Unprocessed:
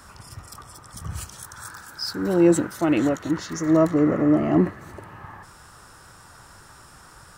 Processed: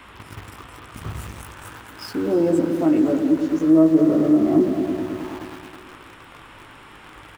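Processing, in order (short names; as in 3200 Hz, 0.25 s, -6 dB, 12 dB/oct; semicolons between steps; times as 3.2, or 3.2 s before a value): doubler 19 ms -4 dB; band noise 930–3400 Hz -41 dBFS; EQ curve 180 Hz 0 dB, 290 Hz +10 dB, 5800 Hz -14 dB; on a send: repeats that get brighter 0.106 s, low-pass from 400 Hz, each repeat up 2 oct, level -6 dB; on the sum: compressor 1.5:1, threshold -33 dBFS, peak gain reduction 11.5 dB; high shelf 7200 Hz +10 dB; in parallel at -3 dB: sample gate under -32 dBFS; on the sum: gain -2.5 dB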